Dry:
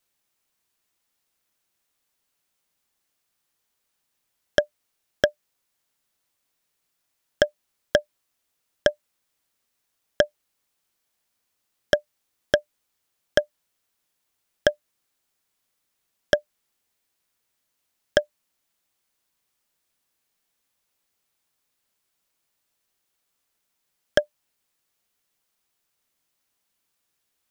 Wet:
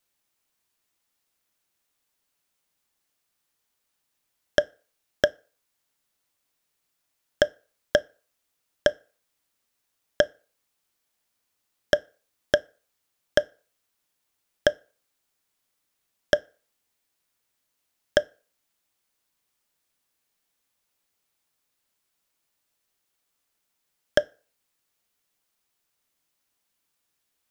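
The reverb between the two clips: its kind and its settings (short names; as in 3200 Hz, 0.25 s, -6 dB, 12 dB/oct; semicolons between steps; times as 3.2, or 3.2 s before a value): FDN reverb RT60 0.41 s, low-frequency decay 0.75×, high-frequency decay 0.7×, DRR 18 dB; gain -1 dB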